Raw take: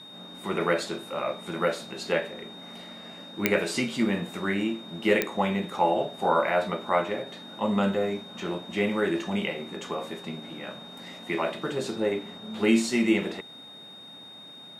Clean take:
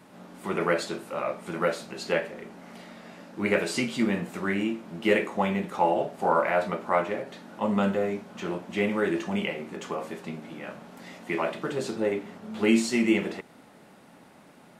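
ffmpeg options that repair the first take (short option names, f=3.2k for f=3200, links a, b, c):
-af "adeclick=t=4,bandreject=f=3.7k:w=30"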